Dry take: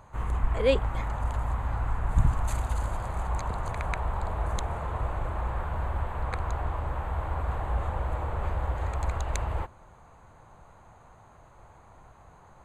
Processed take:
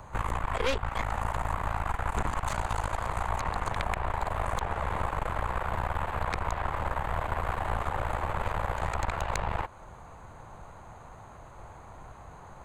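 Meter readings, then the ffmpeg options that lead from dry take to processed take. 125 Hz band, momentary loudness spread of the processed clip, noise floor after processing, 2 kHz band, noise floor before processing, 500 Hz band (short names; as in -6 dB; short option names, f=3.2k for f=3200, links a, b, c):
-4.5 dB, 17 LU, -49 dBFS, +5.0 dB, -54 dBFS, -2.0 dB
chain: -filter_complex "[0:a]aeval=exprs='0.316*(cos(1*acos(clip(val(0)/0.316,-1,1)))-cos(1*PI/2))+0.0562*(cos(8*acos(clip(val(0)/0.316,-1,1)))-cos(8*PI/2))':c=same,acrossover=split=360|720|6200[a][b][c][d];[a]acompressor=threshold=-37dB:ratio=4[e];[b]acompressor=threshold=-47dB:ratio=4[f];[c]acompressor=threshold=-37dB:ratio=4[g];[d]acompressor=threshold=-58dB:ratio=4[h];[e][f][g][h]amix=inputs=4:normalize=0,volume=6dB"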